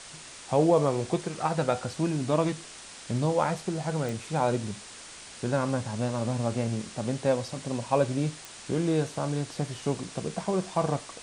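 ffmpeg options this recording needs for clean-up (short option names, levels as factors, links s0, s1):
-af "adeclick=t=4,afwtdn=0.0079"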